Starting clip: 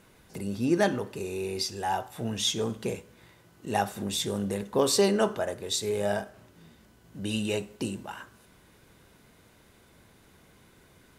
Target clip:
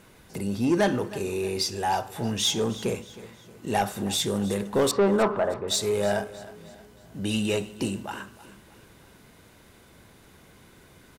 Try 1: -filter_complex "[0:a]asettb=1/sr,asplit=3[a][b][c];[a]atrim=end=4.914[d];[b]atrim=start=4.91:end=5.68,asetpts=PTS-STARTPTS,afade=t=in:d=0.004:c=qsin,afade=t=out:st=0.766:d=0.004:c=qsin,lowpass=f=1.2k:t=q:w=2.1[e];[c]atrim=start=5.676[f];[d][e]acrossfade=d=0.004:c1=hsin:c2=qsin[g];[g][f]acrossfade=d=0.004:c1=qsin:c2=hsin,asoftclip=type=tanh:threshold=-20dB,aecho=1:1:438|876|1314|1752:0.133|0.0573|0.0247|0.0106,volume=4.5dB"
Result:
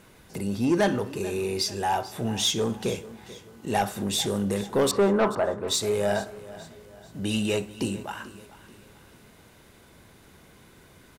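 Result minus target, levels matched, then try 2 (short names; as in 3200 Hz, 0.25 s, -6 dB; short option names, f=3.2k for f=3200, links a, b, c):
echo 0.124 s late
-filter_complex "[0:a]asettb=1/sr,asplit=3[a][b][c];[a]atrim=end=4.914[d];[b]atrim=start=4.91:end=5.68,asetpts=PTS-STARTPTS,afade=t=in:d=0.004:c=qsin,afade=t=out:st=0.766:d=0.004:c=qsin,lowpass=f=1.2k:t=q:w=2.1[e];[c]atrim=start=5.676[f];[d][e]acrossfade=d=0.004:c1=hsin:c2=qsin[g];[g][f]acrossfade=d=0.004:c1=qsin:c2=hsin,asoftclip=type=tanh:threshold=-20dB,aecho=1:1:314|628|942|1256:0.133|0.0573|0.0247|0.0106,volume=4.5dB"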